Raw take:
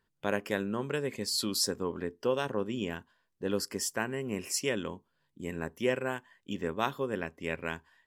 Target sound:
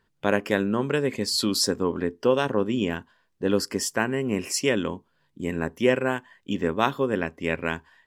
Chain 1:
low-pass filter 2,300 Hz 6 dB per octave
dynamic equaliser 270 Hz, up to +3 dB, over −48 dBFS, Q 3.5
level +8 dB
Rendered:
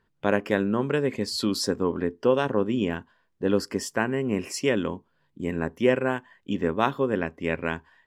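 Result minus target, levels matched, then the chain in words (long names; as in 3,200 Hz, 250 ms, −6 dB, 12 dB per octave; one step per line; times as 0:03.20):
8,000 Hz band −5.5 dB
low-pass filter 6,200 Hz 6 dB per octave
dynamic equaliser 270 Hz, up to +3 dB, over −48 dBFS, Q 3.5
level +8 dB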